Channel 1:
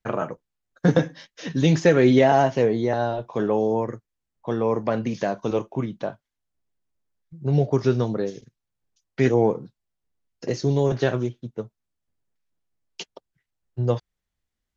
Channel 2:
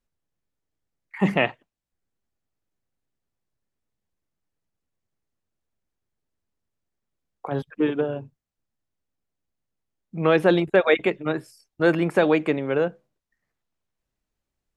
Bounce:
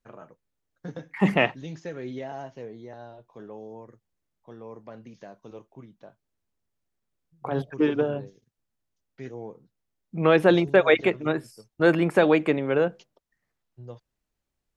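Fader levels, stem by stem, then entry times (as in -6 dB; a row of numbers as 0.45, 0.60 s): -19.5, 0.0 dB; 0.00, 0.00 s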